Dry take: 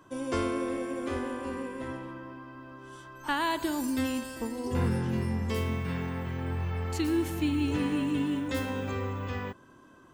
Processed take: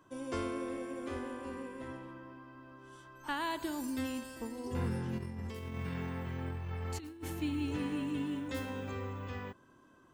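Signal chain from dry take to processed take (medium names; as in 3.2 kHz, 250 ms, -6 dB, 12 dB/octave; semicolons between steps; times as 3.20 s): 5.18–7.33 s: compressor with a negative ratio -32 dBFS, ratio -0.5; trim -7 dB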